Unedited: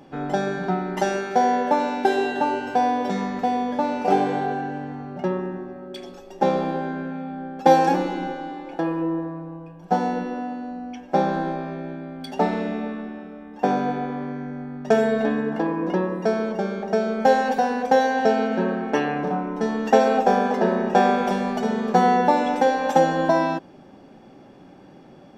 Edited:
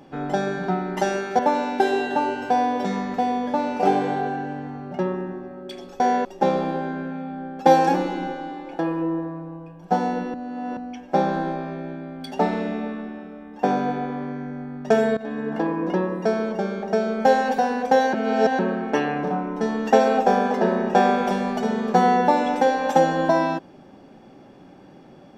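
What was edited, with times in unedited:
0:01.39–0:01.64: move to 0:06.25
0:10.34–0:10.77: reverse
0:15.17–0:15.58: fade in, from −17 dB
0:18.13–0:18.59: reverse

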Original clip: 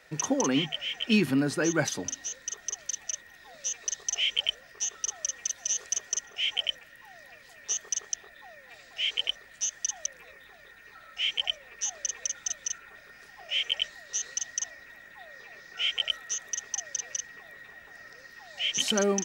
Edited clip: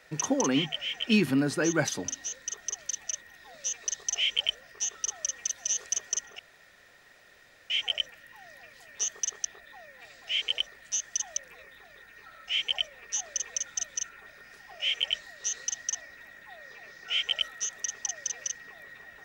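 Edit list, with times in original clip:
0:06.39: splice in room tone 1.31 s

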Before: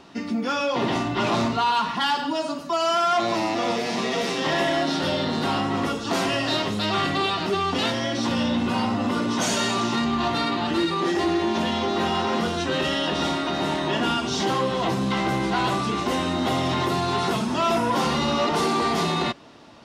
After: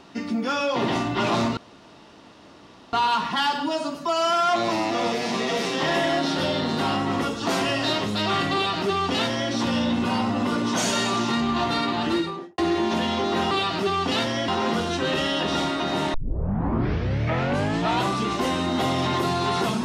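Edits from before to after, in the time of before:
0:01.57: splice in room tone 1.36 s
0:07.18–0:08.15: duplicate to 0:12.15
0:10.73–0:11.22: fade out and dull
0:13.81: tape start 1.92 s

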